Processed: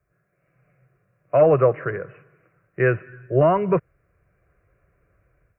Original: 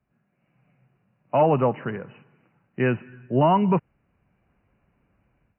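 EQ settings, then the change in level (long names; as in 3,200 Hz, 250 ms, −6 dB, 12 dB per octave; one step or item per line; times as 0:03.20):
phaser with its sweep stopped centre 870 Hz, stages 6
+6.5 dB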